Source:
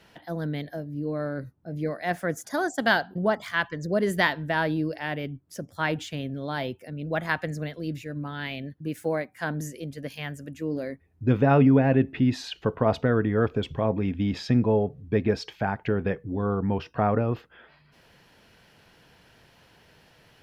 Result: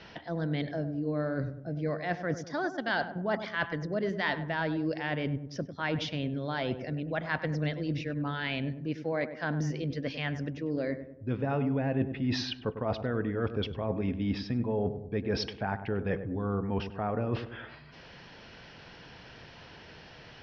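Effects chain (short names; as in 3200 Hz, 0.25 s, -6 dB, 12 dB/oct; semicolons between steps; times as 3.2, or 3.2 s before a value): elliptic low-pass 5600 Hz, stop band 40 dB; reverse; compressor 5:1, threshold -37 dBFS, peak gain reduction 19 dB; reverse; darkening echo 99 ms, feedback 52%, low-pass 1100 Hz, level -9.5 dB; gain +7.5 dB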